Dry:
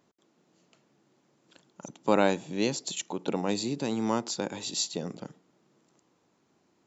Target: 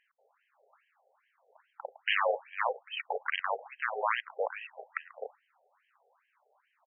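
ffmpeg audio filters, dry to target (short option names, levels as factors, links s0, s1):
-filter_complex "[0:a]aeval=exprs='(mod(11.2*val(0)+1,2)-1)/11.2':c=same,afreqshift=-32,asplit=2[s0][s1];[s1]acrusher=bits=3:mix=0:aa=0.5,volume=0.316[s2];[s0][s2]amix=inputs=2:normalize=0,afftfilt=real='re*between(b*sr/4096,370,4200)':imag='im*between(b*sr/4096,370,4200)':win_size=4096:overlap=0.75,aresample=16000,asoftclip=type=tanh:threshold=0.112,aresample=44100,afftfilt=real='re*between(b*sr/1024,570*pow(2300/570,0.5+0.5*sin(2*PI*2.4*pts/sr))/1.41,570*pow(2300/570,0.5+0.5*sin(2*PI*2.4*pts/sr))*1.41)':imag='im*between(b*sr/1024,570*pow(2300/570,0.5+0.5*sin(2*PI*2.4*pts/sr))/1.41,570*pow(2300/570,0.5+0.5*sin(2*PI*2.4*pts/sr))*1.41)':win_size=1024:overlap=0.75,volume=2.37"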